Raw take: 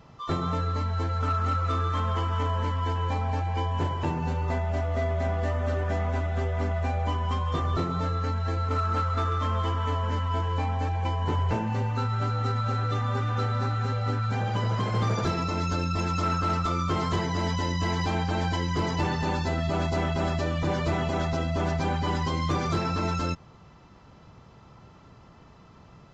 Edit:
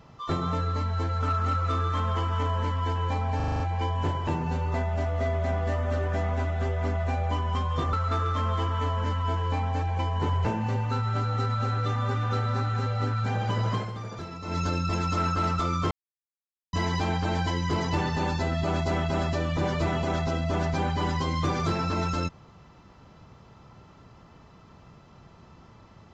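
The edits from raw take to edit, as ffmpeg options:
ffmpeg -i in.wav -filter_complex "[0:a]asplit=12[link_01][link_02][link_03][link_04][link_05][link_06][link_07][link_08][link_09][link_10][link_11][link_12];[link_01]atrim=end=3.402[link_13];[link_02]atrim=start=3.358:end=3.402[link_14];[link_03]atrim=start=3.358:end=3.402[link_15];[link_04]atrim=start=3.358:end=3.402[link_16];[link_05]atrim=start=3.358:end=3.402[link_17];[link_06]atrim=start=3.358:end=3.402[link_18];[link_07]atrim=start=3.358:end=7.692[link_19];[link_08]atrim=start=8.988:end=14.97,asetpts=PTS-STARTPTS,afade=type=out:start_time=5.822:duration=0.16:silence=0.281838[link_20];[link_09]atrim=start=14.97:end=15.48,asetpts=PTS-STARTPTS,volume=-11dB[link_21];[link_10]atrim=start=15.48:end=16.97,asetpts=PTS-STARTPTS,afade=type=in:duration=0.16:silence=0.281838,afade=type=out:start_time=1.486:duration=0.004:curve=hsin[link_22];[link_11]atrim=start=16.97:end=17.79,asetpts=PTS-STARTPTS,volume=0[link_23];[link_12]atrim=start=17.79,asetpts=PTS-STARTPTS,afade=type=in:duration=0.004:curve=hsin[link_24];[link_13][link_14]acrossfade=duration=0.004:curve1=hsin:curve2=hsin[link_25];[link_25][link_15]acrossfade=duration=0.004:curve1=hsin:curve2=hsin[link_26];[link_26][link_16]acrossfade=duration=0.004:curve1=hsin:curve2=hsin[link_27];[link_27][link_17]acrossfade=duration=0.004:curve1=hsin:curve2=hsin[link_28];[link_28][link_18]acrossfade=duration=0.004:curve1=hsin:curve2=hsin[link_29];[link_29][link_19]acrossfade=duration=0.004:curve1=hsin:curve2=hsin[link_30];[link_20][link_21][link_22][link_23][link_24]concat=n=5:v=0:a=1[link_31];[link_30][link_31]acrossfade=duration=0.004:curve1=hsin:curve2=hsin" out.wav

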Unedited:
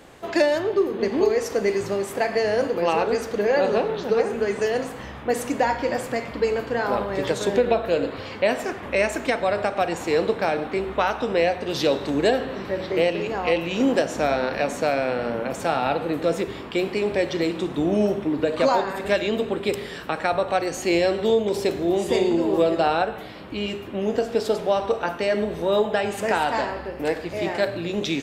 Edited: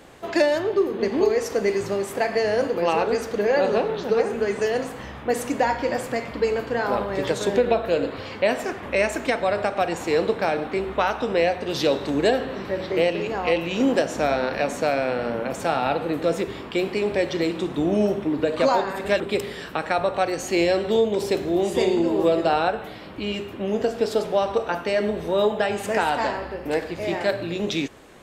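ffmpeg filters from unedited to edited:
ffmpeg -i in.wav -filter_complex "[0:a]asplit=2[link_01][link_02];[link_01]atrim=end=19.202[link_03];[link_02]atrim=start=19.538[link_04];[link_03][link_04]acrossfade=duration=0.004:curve1=hsin:curve2=hsin" out.wav

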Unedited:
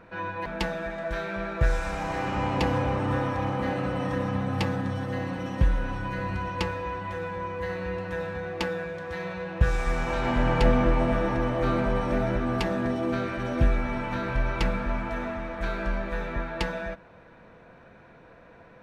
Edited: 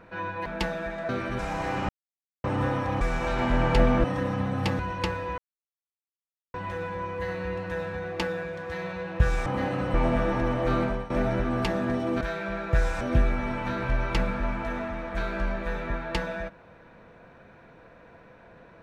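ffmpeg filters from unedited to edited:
ffmpeg -i in.wav -filter_complex "[0:a]asplit=14[link_01][link_02][link_03][link_04][link_05][link_06][link_07][link_08][link_09][link_10][link_11][link_12][link_13][link_14];[link_01]atrim=end=1.092[link_15];[link_02]atrim=start=13.168:end=13.472[link_16];[link_03]atrim=start=1.888:end=2.39,asetpts=PTS-STARTPTS,afade=type=out:start_time=0.498:duration=0.004:curve=hsin[link_17];[link_04]atrim=start=2.39:end=2.94,asetpts=PTS-STARTPTS,volume=0[link_18];[link_05]atrim=start=2.94:end=3.512,asetpts=PTS-STARTPTS,afade=type=in:duration=0.004:curve=hsin[link_19];[link_06]atrim=start=9.868:end=10.902[link_20];[link_07]atrim=start=3.988:end=4.742[link_21];[link_08]atrim=start=6.358:end=6.95,asetpts=PTS-STARTPTS,afade=type=out:start_time=0.588:duration=0.004:curve=hsin,apad=pad_dur=1.16[link_22];[link_09]atrim=start=6.95:end=9.872,asetpts=PTS-STARTPTS,afade=type=in:duration=0.004:curve=hsin[link_23];[link_10]atrim=start=3.508:end=3.992[link_24];[link_11]atrim=start=10.898:end=12.06,asetpts=PTS-STARTPTS,afade=type=out:start_time=0.882:duration=0.28:silence=0.149624[link_25];[link_12]atrim=start=12.06:end=13.172,asetpts=PTS-STARTPTS,afade=type=in:duration=0.004:curve=hsin:silence=0.149624[link_26];[link_13]atrim=start=1.088:end=1.892[link_27];[link_14]atrim=start=13.468[link_28];[link_15][link_16]acrossfade=duration=0.004:curve1=hsin:curve2=hsin[link_29];[link_17][link_18][link_19]concat=n=3:v=0:a=1[link_30];[link_29][link_30]acrossfade=duration=0.004:curve1=hsin:curve2=hsin[link_31];[link_31][link_20]acrossfade=duration=0.004:curve1=hsin:curve2=hsin[link_32];[link_32][link_21]acrossfade=duration=0.004:curve1=hsin:curve2=hsin[link_33];[link_22][link_23]concat=n=2:v=0:a=1[link_34];[link_33][link_34]acrossfade=duration=0.004:curve1=hsin:curve2=hsin[link_35];[link_35][link_24]acrossfade=duration=0.004:curve1=hsin:curve2=hsin[link_36];[link_25][link_26]concat=n=2:v=0:a=1[link_37];[link_36][link_37]acrossfade=duration=0.004:curve1=hsin:curve2=hsin[link_38];[link_38][link_27]acrossfade=duration=0.004:curve1=hsin:curve2=hsin[link_39];[link_39][link_28]acrossfade=duration=0.004:curve1=hsin:curve2=hsin" out.wav

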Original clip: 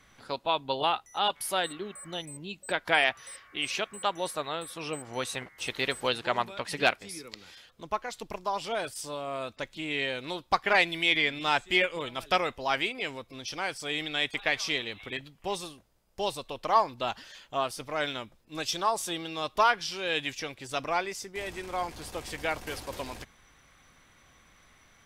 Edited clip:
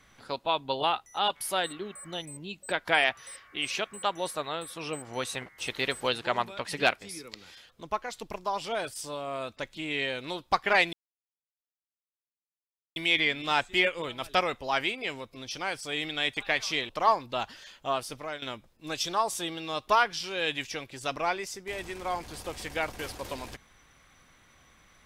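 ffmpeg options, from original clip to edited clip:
ffmpeg -i in.wav -filter_complex "[0:a]asplit=4[link_01][link_02][link_03][link_04];[link_01]atrim=end=10.93,asetpts=PTS-STARTPTS,afade=type=out:start_time=10.926:duration=0.004:curve=hsin,apad=pad_dur=2.03[link_05];[link_02]atrim=start=10.93:end=14.862,asetpts=PTS-STARTPTS,afade=type=in:duration=0.004:curve=hsin[link_06];[link_03]atrim=start=16.568:end=18.1,asetpts=PTS-STARTPTS,afade=type=out:start_time=1.242:duration=0.29:silence=0.177828[link_07];[link_04]atrim=start=18.1,asetpts=PTS-STARTPTS,afade=type=in:duration=0.004:curve=hsin:silence=0.177828[link_08];[link_05][link_06]concat=n=2:v=0:a=1[link_09];[link_07][link_08]concat=n=2:v=0:a=1[link_10];[link_09][link_10]acrossfade=duration=0.004:curve1=hsin:curve2=hsin" out.wav

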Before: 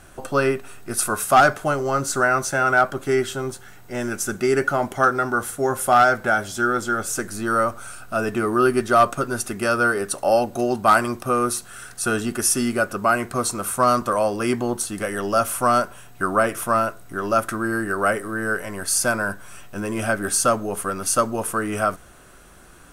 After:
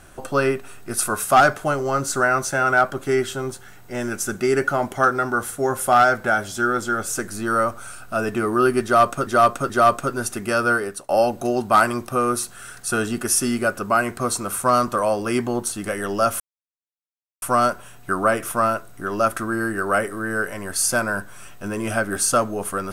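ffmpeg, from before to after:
ffmpeg -i in.wav -filter_complex "[0:a]asplit=5[link_01][link_02][link_03][link_04][link_05];[link_01]atrim=end=9.272[link_06];[link_02]atrim=start=8.838:end=9.272[link_07];[link_03]atrim=start=8.838:end=10.23,asetpts=PTS-STARTPTS,afade=type=out:start_time=1.032:duration=0.36:silence=0.149624[link_08];[link_04]atrim=start=10.23:end=15.54,asetpts=PTS-STARTPTS,afade=type=in:duration=0.004:curve=hsin:silence=0.149624,afade=type=out:start_time=5.306:duration=0.004:curve=hsin,apad=pad_dur=1.02[link_09];[link_05]atrim=start=15.54,asetpts=PTS-STARTPTS,afade=type=in:duration=0.004:curve=hsin[link_10];[link_06][link_07]acrossfade=duration=0.004:curve1=hsin:curve2=hsin[link_11];[link_08][link_09][link_10]concat=n=3:v=0:a=1[link_12];[link_11][link_12]acrossfade=duration=0.004:curve1=hsin:curve2=hsin" out.wav

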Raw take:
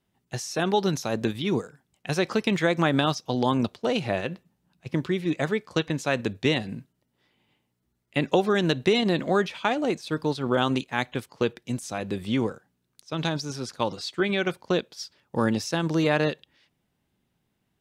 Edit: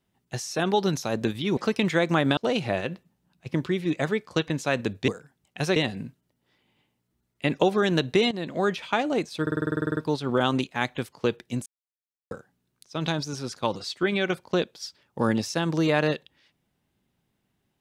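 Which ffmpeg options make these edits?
ffmpeg -i in.wav -filter_complex "[0:a]asplit=19[link_01][link_02][link_03][link_04][link_05][link_06][link_07][link_08][link_09][link_10][link_11][link_12][link_13][link_14][link_15][link_16][link_17][link_18][link_19];[link_01]atrim=end=1.572[link_20];[link_02]atrim=start=2.248:end=3.052[link_21];[link_03]atrim=start=3.768:end=6.482[link_22];[link_04]atrim=start=1.568:end=2.252[link_23];[link_05]atrim=start=6.478:end=9.03,asetpts=PTS-STARTPTS,afade=type=out:start_time=2.548:duration=0.004:curve=hsin:silence=0.223872[link_24];[link_06]atrim=start=9.03:end=10.192,asetpts=PTS-STARTPTS,afade=type=in:duration=0.45:silence=0.223872[link_25];[link_07]atrim=start=10.138:end=10.192[link_26];[link_08]atrim=start=10.138:end=10.192[link_27];[link_09]atrim=start=10.138:end=10.192[link_28];[link_10]atrim=start=10.138:end=10.192[link_29];[link_11]atrim=start=10.138:end=10.192[link_30];[link_12]atrim=start=10.138:end=10.192[link_31];[link_13]atrim=start=10.138:end=10.192[link_32];[link_14]atrim=start=10.138:end=10.192[link_33];[link_15]atrim=start=10.138:end=10.192[link_34];[link_16]atrim=start=10.138:end=10.192[link_35];[link_17]atrim=start=10.138:end=11.83,asetpts=PTS-STARTPTS,afade=type=out:start_time=1.688:duration=0.004:curve=hsin[link_36];[link_18]atrim=start=11.83:end=12.48,asetpts=PTS-STARTPTS,volume=0[link_37];[link_19]atrim=start=12.48,asetpts=PTS-STARTPTS,afade=type=in:duration=0.004:curve=hsin[link_38];[link_20][link_21]acrossfade=duration=0.004:curve1=hsin:curve2=hsin[link_39];[link_39][link_22]acrossfade=duration=0.004:curve1=hsin:curve2=hsin[link_40];[link_40][link_23]acrossfade=duration=0.004:curve1=hsin:curve2=hsin[link_41];[link_24][link_25]concat=n=2:v=0:a=1[link_42];[link_41][link_42]acrossfade=duration=0.004:curve1=hsin:curve2=hsin[link_43];[link_43][link_26]acrossfade=duration=0.004:curve1=hsin:curve2=hsin[link_44];[link_44][link_27]acrossfade=duration=0.004:curve1=hsin:curve2=hsin[link_45];[link_45][link_28]acrossfade=duration=0.004:curve1=hsin:curve2=hsin[link_46];[link_46][link_29]acrossfade=duration=0.004:curve1=hsin:curve2=hsin[link_47];[link_47][link_30]acrossfade=duration=0.004:curve1=hsin:curve2=hsin[link_48];[link_48][link_31]acrossfade=duration=0.004:curve1=hsin:curve2=hsin[link_49];[link_49][link_32]acrossfade=duration=0.004:curve1=hsin:curve2=hsin[link_50];[link_50][link_33]acrossfade=duration=0.004:curve1=hsin:curve2=hsin[link_51];[link_51][link_34]acrossfade=duration=0.004:curve1=hsin:curve2=hsin[link_52];[link_52][link_35]acrossfade=duration=0.004:curve1=hsin:curve2=hsin[link_53];[link_36][link_37][link_38]concat=n=3:v=0:a=1[link_54];[link_53][link_54]acrossfade=duration=0.004:curve1=hsin:curve2=hsin" out.wav

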